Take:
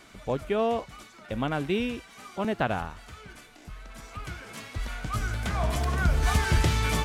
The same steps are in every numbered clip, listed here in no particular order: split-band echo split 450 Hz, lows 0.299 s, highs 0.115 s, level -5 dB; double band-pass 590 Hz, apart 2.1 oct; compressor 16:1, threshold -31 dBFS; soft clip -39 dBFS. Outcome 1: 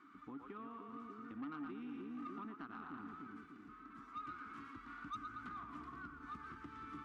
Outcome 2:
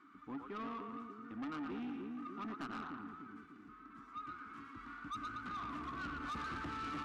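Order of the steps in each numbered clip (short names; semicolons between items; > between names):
split-band echo > compressor > double band-pass > soft clip; double band-pass > compressor > split-band echo > soft clip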